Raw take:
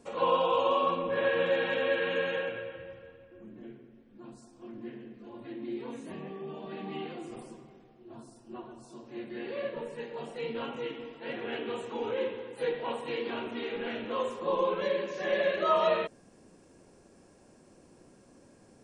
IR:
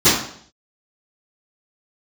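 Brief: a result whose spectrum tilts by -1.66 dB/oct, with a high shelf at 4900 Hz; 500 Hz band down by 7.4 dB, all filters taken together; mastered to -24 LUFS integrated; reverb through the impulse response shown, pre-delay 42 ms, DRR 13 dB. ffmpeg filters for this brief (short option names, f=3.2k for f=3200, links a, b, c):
-filter_complex "[0:a]equalizer=f=500:t=o:g=-8.5,highshelf=f=4.9k:g=4,asplit=2[a][b];[1:a]atrim=start_sample=2205,adelay=42[c];[b][c]afir=irnorm=-1:irlink=0,volume=-37dB[d];[a][d]amix=inputs=2:normalize=0,volume=11.5dB"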